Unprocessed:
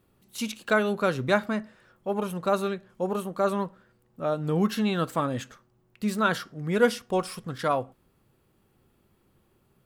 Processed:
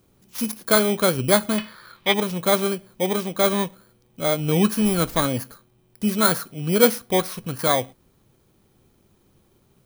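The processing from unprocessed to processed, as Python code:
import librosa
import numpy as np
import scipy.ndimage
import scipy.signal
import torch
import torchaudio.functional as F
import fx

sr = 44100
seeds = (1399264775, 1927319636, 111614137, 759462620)

y = fx.bit_reversed(x, sr, seeds[0], block=16)
y = fx.band_shelf(y, sr, hz=2100.0, db=13.5, octaves=2.5, at=(1.58, 2.14))
y = fx.dmg_noise_colour(y, sr, seeds[1], colour='brown', level_db=-44.0, at=(4.82, 5.24), fade=0.02)
y = F.gain(torch.from_numpy(y), 5.5).numpy()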